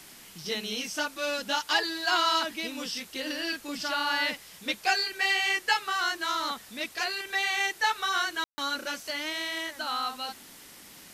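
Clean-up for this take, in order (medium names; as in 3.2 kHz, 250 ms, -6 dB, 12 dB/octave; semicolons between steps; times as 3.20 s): room tone fill 8.44–8.58 s; noise reduction 25 dB, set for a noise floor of -50 dBFS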